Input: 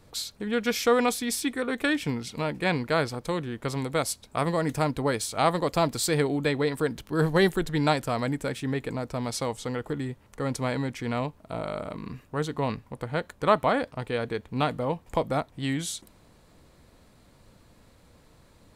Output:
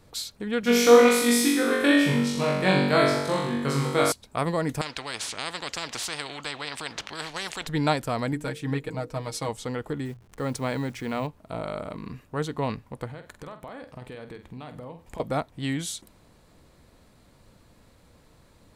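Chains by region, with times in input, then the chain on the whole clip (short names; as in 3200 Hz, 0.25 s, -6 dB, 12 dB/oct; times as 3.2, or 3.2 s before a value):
0.61–4.12 HPF 73 Hz + flutter echo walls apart 3.6 m, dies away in 0.97 s
4.81–7.67 HPF 980 Hz 6 dB/oct + air absorption 140 m + spectral compressor 4:1
8.32–9.49 notches 50/100/150/200/250/300/350/400/450/500 Hz + comb 6.4 ms, depth 68% + upward expander, over -36 dBFS
10.05–11.27 level-crossing sampler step -50.5 dBFS + notches 60/120 Hz
13.08–15.2 notch 1400 Hz, Q 22 + compressor 16:1, threshold -36 dBFS + flutter echo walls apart 8.2 m, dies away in 0.29 s
whole clip: dry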